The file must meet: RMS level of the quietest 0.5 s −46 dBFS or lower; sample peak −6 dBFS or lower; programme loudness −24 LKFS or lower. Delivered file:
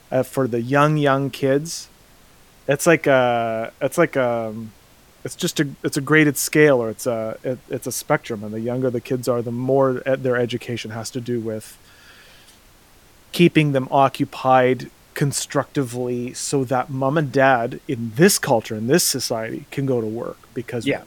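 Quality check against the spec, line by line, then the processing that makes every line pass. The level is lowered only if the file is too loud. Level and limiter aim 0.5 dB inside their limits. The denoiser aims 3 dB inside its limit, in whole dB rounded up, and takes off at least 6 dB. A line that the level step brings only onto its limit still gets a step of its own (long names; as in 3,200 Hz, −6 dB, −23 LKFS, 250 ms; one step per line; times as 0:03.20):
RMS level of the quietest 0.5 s −51 dBFS: in spec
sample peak −2.0 dBFS: out of spec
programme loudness −20.0 LKFS: out of spec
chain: level −4.5 dB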